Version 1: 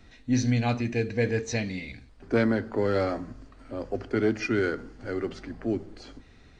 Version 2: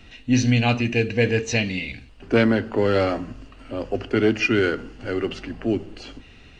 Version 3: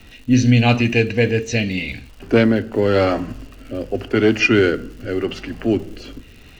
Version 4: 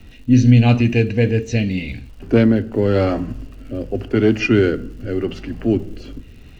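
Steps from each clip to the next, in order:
parametric band 2,800 Hz +15 dB 0.28 octaves; level +5.5 dB
rotating-speaker cabinet horn 0.85 Hz; surface crackle 220 per second −43 dBFS; level +6 dB
low-shelf EQ 400 Hz +10 dB; level −5.5 dB

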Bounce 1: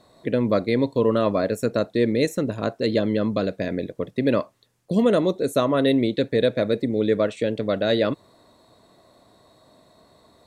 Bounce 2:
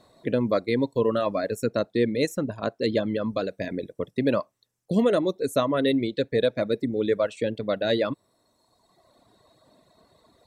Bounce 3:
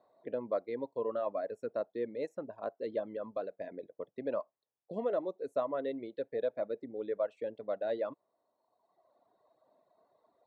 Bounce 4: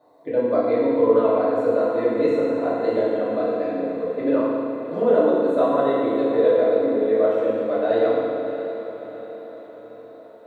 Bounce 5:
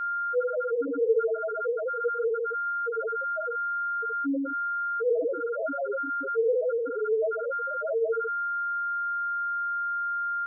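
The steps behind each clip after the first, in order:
reverb reduction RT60 1.4 s; level −1.5 dB
resonant band-pass 710 Hz, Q 1.5; level −7 dB
feedback delay with all-pass diffusion 645 ms, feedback 53%, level −11 dB; feedback delay network reverb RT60 2.2 s, low-frequency decay 1.3×, high-frequency decay 0.9×, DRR −10 dB; level +5.5 dB
steady tone 1,400 Hz −23 dBFS; spectral peaks only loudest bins 1

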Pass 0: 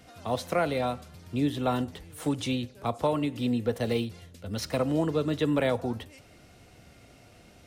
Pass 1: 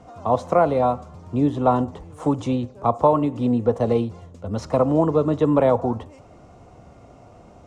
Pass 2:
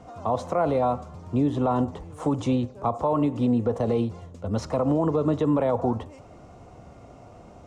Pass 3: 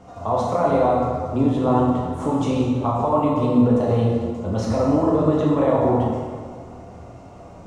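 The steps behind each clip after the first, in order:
drawn EQ curve 330 Hz 0 dB, 1,100 Hz +6 dB, 1,600 Hz −10 dB, 4,400 Hz −15 dB, 7,000 Hz −8 dB, 14,000 Hz −30 dB; level +7 dB
brickwall limiter −14.5 dBFS, peak gain reduction 9.5 dB
dense smooth reverb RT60 1.9 s, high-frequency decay 0.65×, DRR −4.5 dB

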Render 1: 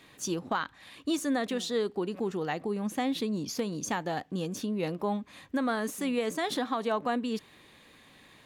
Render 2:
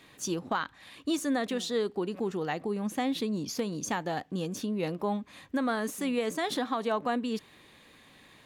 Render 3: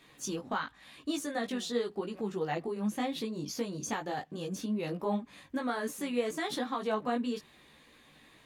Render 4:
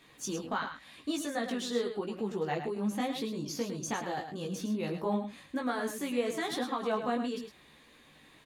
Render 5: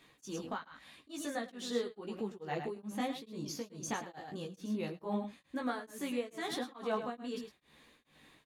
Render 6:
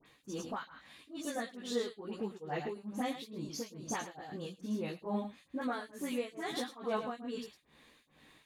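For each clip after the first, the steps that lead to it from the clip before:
no processing that can be heard
multi-voice chorus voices 6, 0.81 Hz, delay 17 ms, depth 4.2 ms
single-tap delay 107 ms −8.5 dB
tremolo along a rectified sine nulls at 2.3 Hz; level −2.5 dB
all-pass dispersion highs, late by 59 ms, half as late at 1,900 Hz

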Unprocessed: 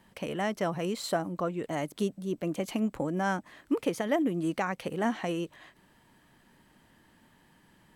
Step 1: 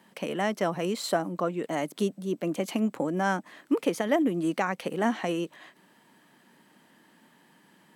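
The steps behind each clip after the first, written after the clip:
high-pass filter 170 Hz 24 dB per octave
level +3 dB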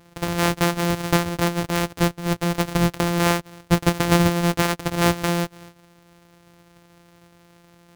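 samples sorted by size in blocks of 256 samples
level +7 dB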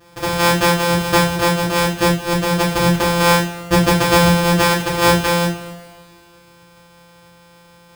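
coupled-rooms reverb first 0.36 s, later 2.2 s, from −21 dB, DRR −9.5 dB
level −2.5 dB

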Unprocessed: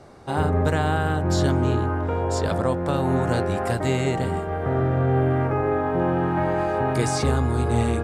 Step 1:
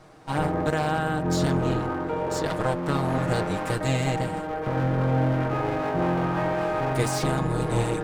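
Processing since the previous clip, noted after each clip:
lower of the sound and its delayed copy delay 6.4 ms
level −1.5 dB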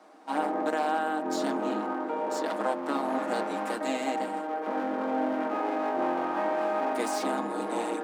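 Chebyshev high-pass with heavy ripple 200 Hz, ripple 6 dB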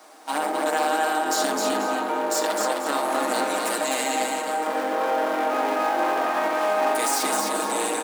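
RIAA equalisation recording
brickwall limiter −20.5 dBFS, peak gain reduction 5.5 dB
on a send: multi-tap delay 67/259/488 ms −11.5/−3.5/−13.5 dB
on the sum: level +6 dB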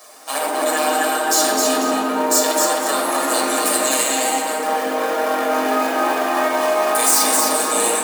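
reverb reduction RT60 0.52 s
high-shelf EQ 4,800 Hz +12 dB
convolution reverb RT60 2.2 s, pre-delay 4 ms, DRR −1 dB

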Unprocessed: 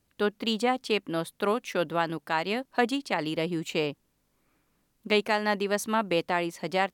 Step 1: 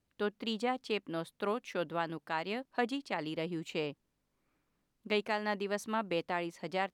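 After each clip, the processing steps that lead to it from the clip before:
high-shelf EQ 8,300 Hz −9.5 dB
level −7.5 dB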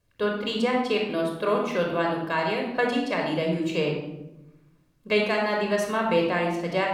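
rectangular room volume 3,300 cubic metres, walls furnished, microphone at 5.4 metres
level +5.5 dB

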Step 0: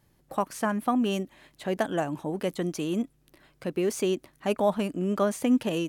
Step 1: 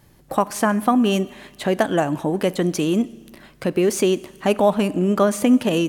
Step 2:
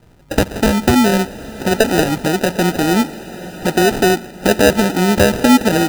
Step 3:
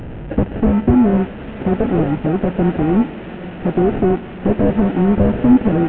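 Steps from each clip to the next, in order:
in parallel at +1 dB: downward compressor, threshold −33 dBFS, peak gain reduction 14 dB; on the sum: four-comb reverb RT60 1.4 s, combs from 30 ms, DRR 18.5 dB; level +5.5 dB
decimation without filtering 40×; feedback delay with all-pass diffusion 928 ms, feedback 41%, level −15 dB; level +5 dB
linear delta modulator 16 kbit/s, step −24.5 dBFS; low-shelf EQ 490 Hz +9 dB; level −6 dB

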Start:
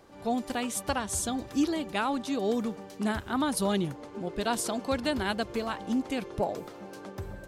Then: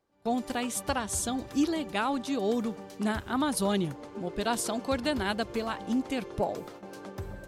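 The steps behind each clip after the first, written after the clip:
noise gate with hold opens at −35 dBFS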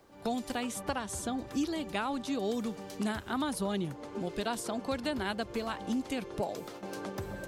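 multiband upward and downward compressor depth 70%
level −4.5 dB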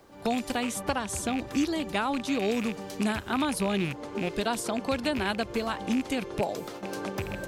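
loose part that buzzes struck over −39 dBFS, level −30 dBFS
level +5 dB

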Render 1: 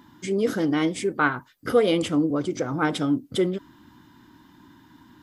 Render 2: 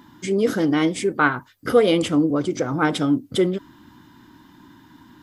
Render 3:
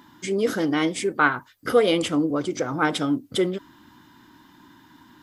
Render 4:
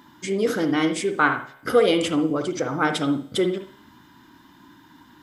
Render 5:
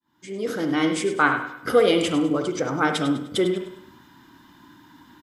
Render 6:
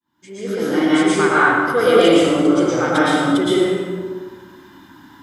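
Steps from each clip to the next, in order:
hum removal 49.7 Hz, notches 2; level +3.5 dB
low-shelf EQ 360 Hz −6.5 dB
tuned comb filter 68 Hz, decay 1 s, harmonics all, mix 40%; on a send at −7.5 dB: convolution reverb, pre-delay 57 ms; on the sum: level +4 dB
fade in at the beginning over 0.86 s; on a send: repeating echo 101 ms, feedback 41%, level −11.5 dB
dense smooth reverb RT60 1.6 s, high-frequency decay 0.55×, pre-delay 105 ms, DRR −9 dB; level −2.5 dB

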